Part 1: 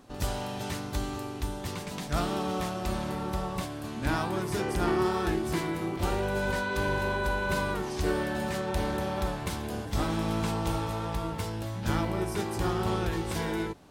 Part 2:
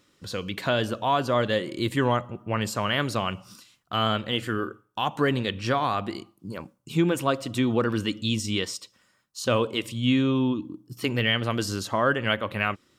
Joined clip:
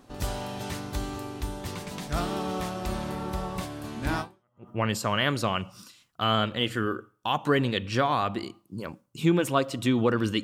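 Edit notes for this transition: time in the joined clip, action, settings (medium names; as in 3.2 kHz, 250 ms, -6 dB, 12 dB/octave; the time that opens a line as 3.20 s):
part 1
4.44 s: go over to part 2 from 2.16 s, crossfade 0.48 s exponential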